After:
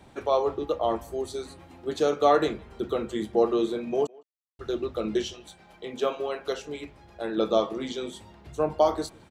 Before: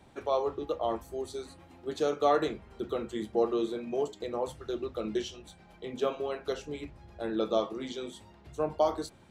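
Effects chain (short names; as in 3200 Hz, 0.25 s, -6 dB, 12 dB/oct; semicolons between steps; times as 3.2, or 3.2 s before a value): 4.07–4.59 mute; 5.33–7.38 low shelf 240 Hz -9 dB; speakerphone echo 0.16 s, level -24 dB; gain +5 dB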